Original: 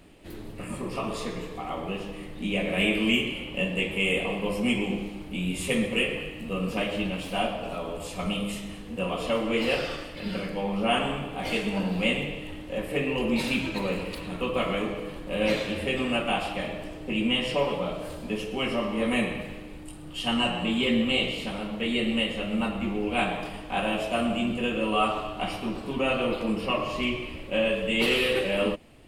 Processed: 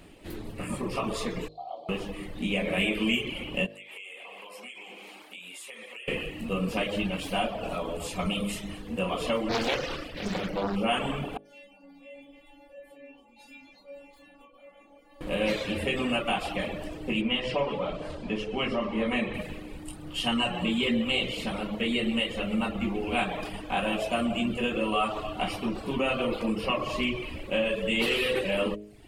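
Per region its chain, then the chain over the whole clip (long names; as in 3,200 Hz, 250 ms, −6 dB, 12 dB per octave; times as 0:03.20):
0:01.48–0:01.89: pair of resonant band-passes 1,700 Hz, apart 2.6 octaves + notch filter 2,100 Hz, Q 18
0:03.66–0:06.08: high-pass filter 770 Hz + downward compressor 10 to 1, threshold −42 dBFS
0:09.49–0:10.76: parametric band 8,900 Hz −5 dB 0.44 octaves + highs frequency-modulated by the lows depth 0.8 ms
0:11.37–0:15.21: parametric band 750 Hz +12 dB 0.52 octaves + downward compressor 8 to 1, threshold −32 dBFS + stiff-string resonator 280 Hz, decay 0.53 s, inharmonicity 0.002
0:17.21–0:19.34: high-frequency loss of the air 96 metres + mains-hum notches 60/120/180/240/300/360/420/480/540 Hz
whole clip: reverb reduction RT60 0.53 s; hum removal 52.05 Hz, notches 13; downward compressor 2 to 1, threshold −29 dBFS; level +3 dB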